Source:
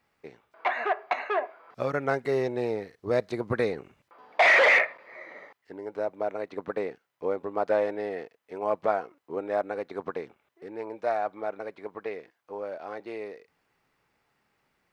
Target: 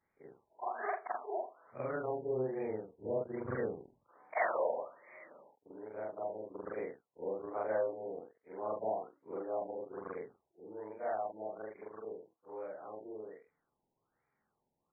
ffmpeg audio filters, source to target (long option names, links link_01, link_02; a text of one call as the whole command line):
ffmpeg -i in.wav -af "afftfilt=real='re':imag='-im':win_size=4096:overlap=0.75,afftfilt=real='re*lt(b*sr/1024,970*pow(2500/970,0.5+0.5*sin(2*PI*1.2*pts/sr)))':imag='im*lt(b*sr/1024,970*pow(2500/970,0.5+0.5*sin(2*PI*1.2*pts/sr)))':win_size=1024:overlap=0.75,volume=-4.5dB" out.wav